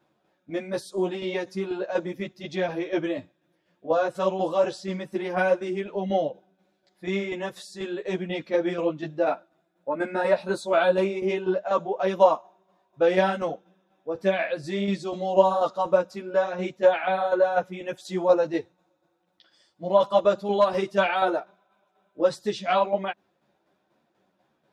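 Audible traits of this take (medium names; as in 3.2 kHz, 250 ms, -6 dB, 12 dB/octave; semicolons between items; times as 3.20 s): tremolo saw down 4.1 Hz, depth 55%; a shimmering, thickened sound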